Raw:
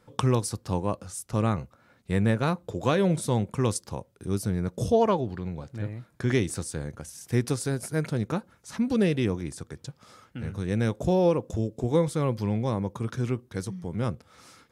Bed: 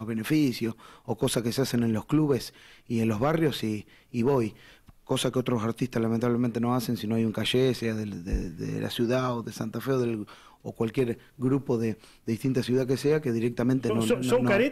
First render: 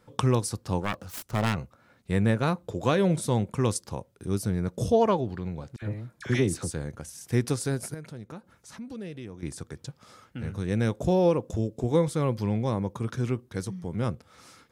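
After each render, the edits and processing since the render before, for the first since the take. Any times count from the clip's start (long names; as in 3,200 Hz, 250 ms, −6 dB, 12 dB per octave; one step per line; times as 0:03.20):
0:00.81–0:01.56: phase distortion by the signal itself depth 0.99 ms
0:05.76–0:06.71: all-pass dispersion lows, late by 60 ms, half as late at 1,200 Hz
0:07.94–0:09.43: downward compressor 2 to 1, threshold −48 dBFS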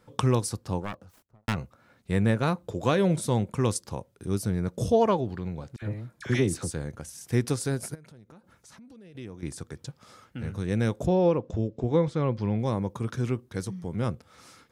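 0:00.46–0:01.48: fade out and dull
0:07.95–0:09.15: downward compressor 4 to 1, threshold −49 dBFS
0:11.06–0:12.59: high-frequency loss of the air 140 metres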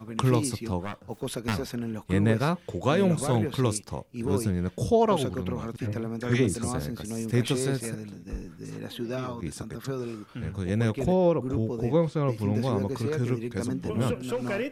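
mix in bed −7 dB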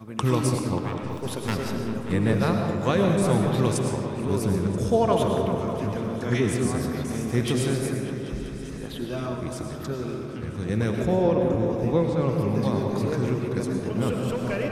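echo whose low-pass opens from repeat to repeat 196 ms, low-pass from 750 Hz, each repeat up 1 octave, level −6 dB
comb and all-pass reverb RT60 1.3 s, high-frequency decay 0.7×, pre-delay 65 ms, DRR 3.5 dB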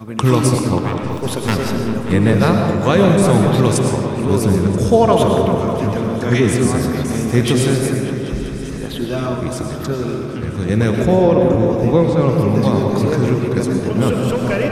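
level +9.5 dB
brickwall limiter −2 dBFS, peak gain reduction 2.5 dB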